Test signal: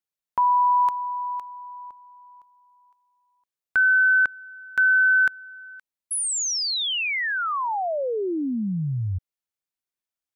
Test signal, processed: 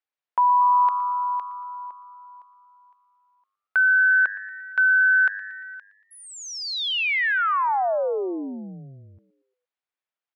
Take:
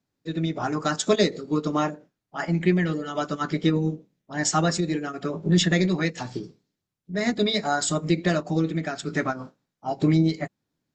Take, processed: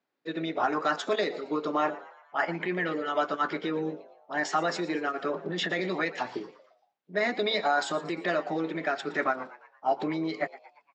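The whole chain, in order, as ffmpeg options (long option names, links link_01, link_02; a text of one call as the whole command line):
ffmpeg -i in.wav -filter_complex "[0:a]alimiter=limit=-18dB:level=0:latency=1:release=41,highpass=460,lowpass=2900,asplit=5[link_01][link_02][link_03][link_04][link_05];[link_02]adelay=116,afreqshift=100,volume=-18dB[link_06];[link_03]adelay=232,afreqshift=200,volume=-24dB[link_07];[link_04]adelay=348,afreqshift=300,volume=-30dB[link_08];[link_05]adelay=464,afreqshift=400,volume=-36.1dB[link_09];[link_01][link_06][link_07][link_08][link_09]amix=inputs=5:normalize=0,volume=4dB" out.wav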